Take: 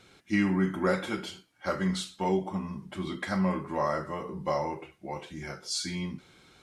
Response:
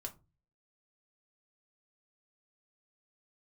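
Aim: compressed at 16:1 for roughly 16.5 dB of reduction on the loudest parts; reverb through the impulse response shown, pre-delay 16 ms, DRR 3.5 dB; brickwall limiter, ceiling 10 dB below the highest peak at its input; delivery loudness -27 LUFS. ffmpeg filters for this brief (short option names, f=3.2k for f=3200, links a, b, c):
-filter_complex "[0:a]acompressor=threshold=-38dB:ratio=16,alimiter=level_in=11dB:limit=-24dB:level=0:latency=1,volume=-11dB,asplit=2[a][b];[1:a]atrim=start_sample=2205,adelay=16[c];[b][c]afir=irnorm=-1:irlink=0,volume=-0.5dB[d];[a][d]amix=inputs=2:normalize=0,volume=16dB"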